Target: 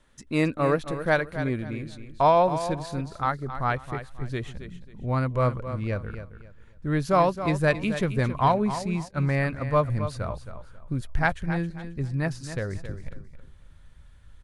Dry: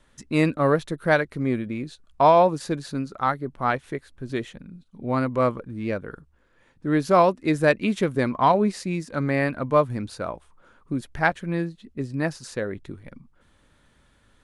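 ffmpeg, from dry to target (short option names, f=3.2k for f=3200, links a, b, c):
-filter_complex "[0:a]aecho=1:1:269|538|807:0.282|0.0761|0.0205,asplit=3[a][b][c];[a]afade=t=out:st=9.07:d=0.02[d];[b]agate=range=-33dB:threshold=-25dB:ratio=3:detection=peak,afade=t=in:st=9.07:d=0.02,afade=t=out:st=9.96:d=0.02[e];[c]afade=t=in:st=9.96:d=0.02[f];[d][e][f]amix=inputs=3:normalize=0,asubboost=boost=7.5:cutoff=97,volume=-2.5dB"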